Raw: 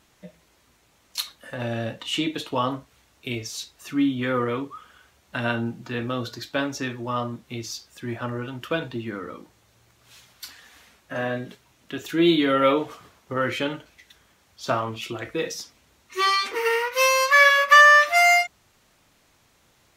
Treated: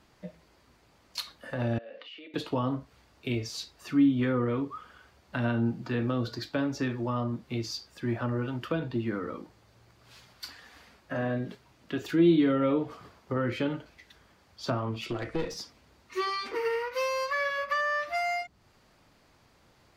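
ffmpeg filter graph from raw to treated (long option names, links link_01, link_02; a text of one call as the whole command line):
ffmpeg -i in.wav -filter_complex "[0:a]asettb=1/sr,asplit=3[link_01][link_02][link_03];[link_01]atrim=end=1.784[link_04];[link_02]atrim=start=1.78:end=2.34,asetpts=PTS-STARTPTS,afade=type=in:duration=0.004:curve=qsin,afade=type=out:start_time=0.556:duration=0.004:curve=qsin,bandreject=frequency=960:width=11,acompressor=threshold=-38dB:ratio=16:attack=3.2:release=140:knee=1:detection=peak,highpass=frequency=340:width=0.5412,highpass=frequency=340:width=1.3066,equalizer=frequency=350:width_type=q:width=4:gain=-7,equalizer=frequency=510:width_type=q:width=4:gain=6,equalizer=frequency=870:width_type=q:width=4:gain=-10,equalizer=frequency=1300:width_type=q:width=4:gain=-3,equalizer=frequency=2500:width_type=q:width=4:gain=3,equalizer=frequency=3800:width_type=q:width=4:gain=-5,lowpass=frequency=4200:width=0.5412,lowpass=frequency=4200:width=1.3066[link_05];[link_03]atrim=start=2.336[link_06];[link_04][link_05]acrossfade=duration=0.004:curve1=hsin:curve2=qsin[link_07];[link_07][link_06]acrossfade=duration=0.004:curve1=qsin:curve2=hsin,asettb=1/sr,asplit=3[link_08][link_09][link_10];[link_08]atrim=end=15.064[link_11];[link_09]atrim=start=15.06:end=15.57,asetpts=PTS-STARTPTS,afade=type=in:duration=0.004:curve=qsin,afade=type=out:start_time=0.506:duration=0.004:curve=qsin,lowpass=frequency=11000:width=0.5412,lowpass=frequency=11000:width=1.3066,acompressor=mode=upward:threshold=-38dB:ratio=2.5:attack=3.2:release=140:knee=2.83:detection=peak,aeval=exprs='clip(val(0),-1,0.0237)':channel_layout=same[link_12];[link_10]atrim=start=15.566[link_13];[link_11][link_12]acrossfade=duration=0.004:curve1=hsin:curve2=qsin[link_14];[link_14][link_13]acrossfade=duration=0.004:curve1=qsin:curve2=hsin,highshelf=frequency=2800:gain=-11.5,acrossover=split=330[link_15][link_16];[link_16]acompressor=threshold=-35dB:ratio=3[link_17];[link_15][link_17]amix=inputs=2:normalize=0,equalizer=frequency=4700:width_type=o:width=0.22:gain=9,volume=1.5dB" out.wav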